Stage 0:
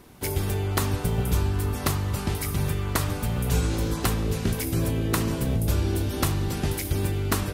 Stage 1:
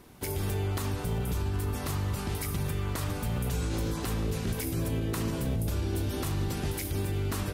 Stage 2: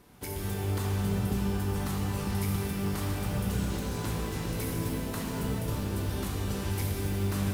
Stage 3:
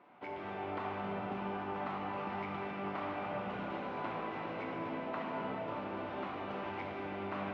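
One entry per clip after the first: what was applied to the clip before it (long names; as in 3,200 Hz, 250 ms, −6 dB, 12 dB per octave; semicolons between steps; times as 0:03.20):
brickwall limiter −19.5 dBFS, peak gain reduction 10.5 dB; level −3 dB
reverb with rising layers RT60 3.2 s, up +12 semitones, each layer −8 dB, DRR −1 dB; level −4.5 dB
loudspeaker in its box 430–2,300 Hz, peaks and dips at 440 Hz −8 dB, 670 Hz +4 dB, 1,700 Hz −7 dB; level +2.5 dB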